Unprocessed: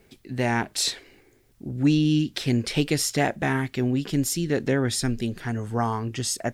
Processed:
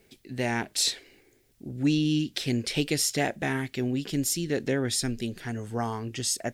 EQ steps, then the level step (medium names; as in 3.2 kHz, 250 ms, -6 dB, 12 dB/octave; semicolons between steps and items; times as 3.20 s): bass shelf 280 Hz -7 dB; peaking EQ 1.1 kHz -7 dB 1.3 oct; 0.0 dB